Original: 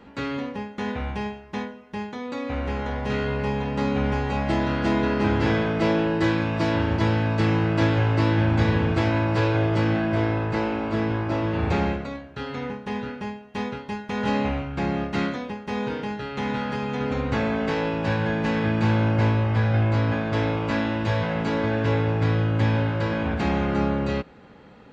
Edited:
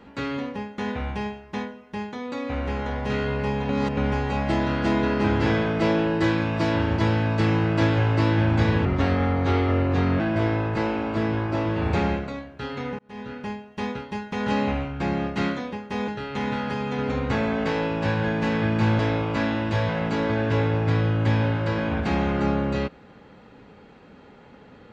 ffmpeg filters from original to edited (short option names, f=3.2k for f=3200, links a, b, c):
-filter_complex "[0:a]asplit=8[a][b][c][d][e][f][g][h];[a]atrim=end=3.692[i];[b]atrim=start=3.688:end=3.972,asetpts=PTS-STARTPTS,areverse[j];[c]atrim=start=3.968:end=8.854[k];[d]atrim=start=8.85:end=9.97,asetpts=PTS-STARTPTS,asetrate=36603,aresample=44100,atrim=end_sample=59508,asetpts=PTS-STARTPTS[l];[e]atrim=start=9.966:end=12.76,asetpts=PTS-STARTPTS,afade=t=out:st=2.79:d=0.004:c=hsin[m];[f]atrim=start=12.76:end=15.852,asetpts=PTS-STARTPTS,afade=t=in:d=0.46[n];[g]atrim=start=16.098:end=19.012[o];[h]atrim=start=20.328[p];[i][j]acrossfade=d=0.004:c1=hsin:c2=hsin[q];[q][k]acrossfade=d=0.004:c1=hsin:c2=hsin[r];[r][l]acrossfade=d=0.004:c1=hsin:c2=hsin[s];[m][n]concat=n=2:v=0:a=1[t];[s][t]acrossfade=d=0.004:c1=hsin:c2=hsin[u];[u][o]acrossfade=d=0.004:c1=hsin:c2=hsin[v];[v][p]acrossfade=d=0.004:c1=hsin:c2=hsin"